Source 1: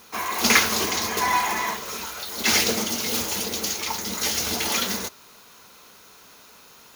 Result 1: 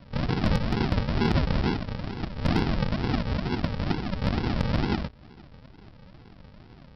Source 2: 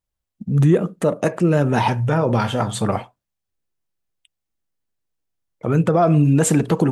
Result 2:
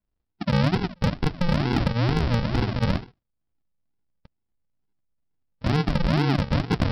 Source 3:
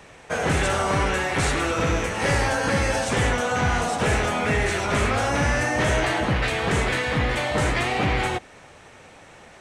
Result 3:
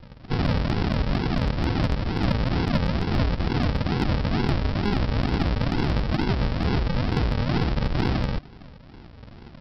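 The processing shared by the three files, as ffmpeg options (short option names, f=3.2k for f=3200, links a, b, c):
-af "aresample=11025,acrusher=samples=25:mix=1:aa=0.000001:lfo=1:lforange=15:lforate=2.2,aresample=44100,acompressor=threshold=-23dB:ratio=5,asoftclip=type=hard:threshold=-18dB,volume=3.5dB"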